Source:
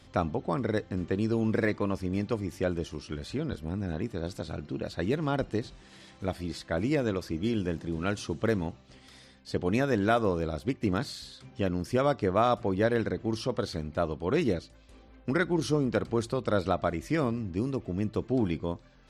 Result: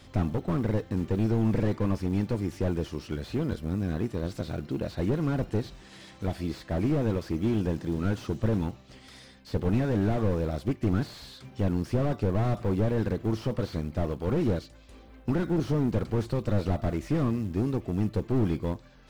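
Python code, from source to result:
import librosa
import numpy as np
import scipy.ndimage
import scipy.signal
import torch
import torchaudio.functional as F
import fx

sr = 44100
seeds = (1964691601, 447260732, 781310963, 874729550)

y = fx.quant_float(x, sr, bits=4)
y = fx.slew_limit(y, sr, full_power_hz=15.0)
y = y * 10.0 ** (3.5 / 20.0)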